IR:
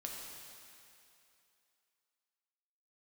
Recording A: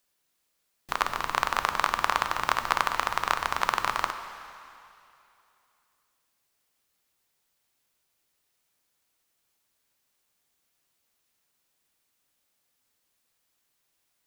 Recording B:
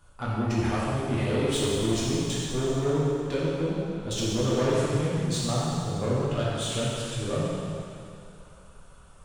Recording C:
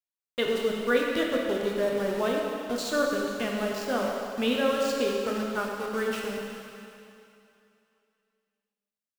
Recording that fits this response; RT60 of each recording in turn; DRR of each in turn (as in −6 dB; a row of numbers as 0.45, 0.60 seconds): C; 2.7, 2.7, 2.7 seconds; 8.0, −8.0, −1.5 decibels